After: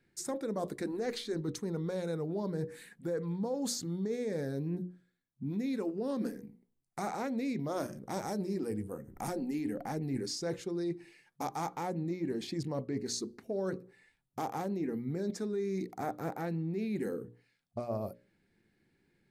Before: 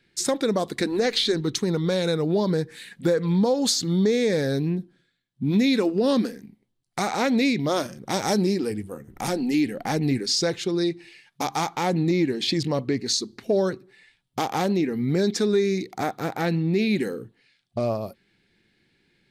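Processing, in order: bell 3500 Hz -12.5 dB 1.6 oct; notches 60/120/180/240/300/360/420/480/540/600 Hz; reverse; compressor, threshold -28 dBFS, peak gain reduction 11 dB; reverse; gain -4 dB

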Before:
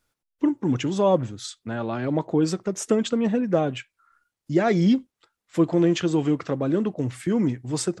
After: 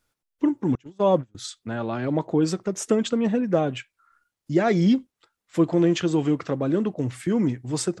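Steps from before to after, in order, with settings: 0.75–1.35 gate -21 dBFS, range -30 dB

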